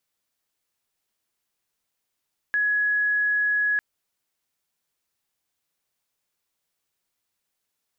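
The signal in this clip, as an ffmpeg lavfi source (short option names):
-f lavfi -i "sine=f=1680:d=1.25:r=44100,volume=-1.44dB"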